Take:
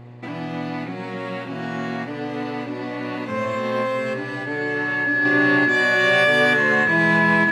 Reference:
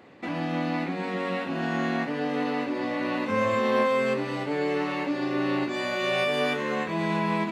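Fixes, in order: de-hum 120.8 Hz, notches 9; band-stop 1.7 kHz, Q 30; trim 0 dB, from 5.25 s -6.5 dB

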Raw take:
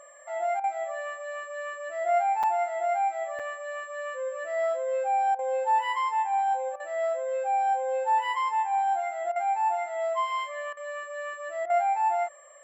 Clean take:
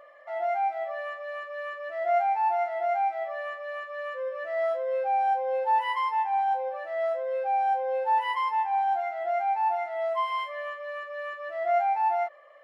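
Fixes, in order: band-stop 7.5 kHz, Q 30; interpolate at 2.43/3.39 s, 5.5 ms; interpolate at 0.60/5.35/6.76/9.32/10.73/11.66 s, 38 ms

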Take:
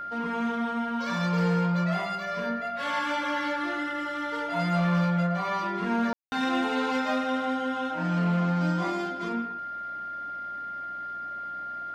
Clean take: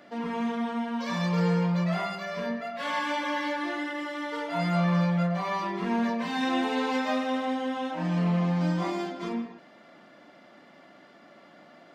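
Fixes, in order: clip repair -18.5 dBFS; de-hum 61.6 Hz, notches 3; band-stop 1.4 kHz, Q 30; room tone fill 6.13–6.32 s

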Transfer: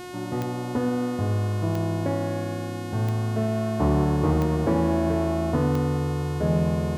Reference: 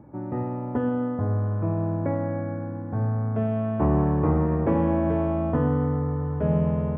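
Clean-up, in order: clip repair -12 dBFS; de-click; de-hum 360.9 Hz, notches 36

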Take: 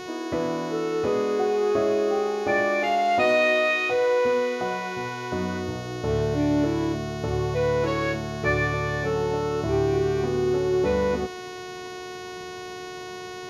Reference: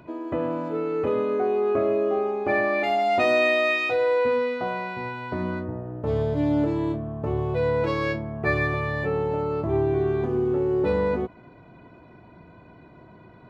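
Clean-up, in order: de-hum 366.4 Hz, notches 19; band-stop 450 Hz, Q 30; expander -28 dBFS, range -21 dB

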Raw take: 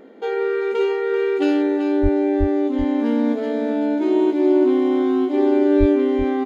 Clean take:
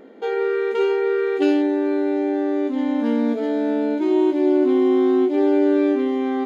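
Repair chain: de-plosive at 2.02/2.39/5.79 s; inverse comb 385 ms -9.5 dB

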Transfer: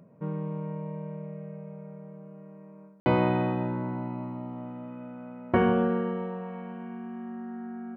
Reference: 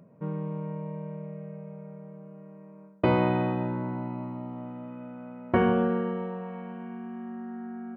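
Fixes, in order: room tone fill 3.00–3.06 s

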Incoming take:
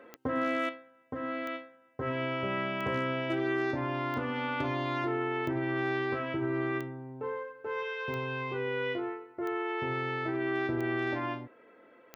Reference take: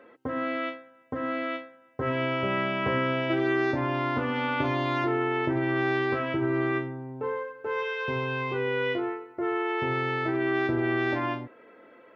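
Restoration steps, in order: clip repair -21 dBFS; de-click; gain correction +5 dB, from 0.69 s

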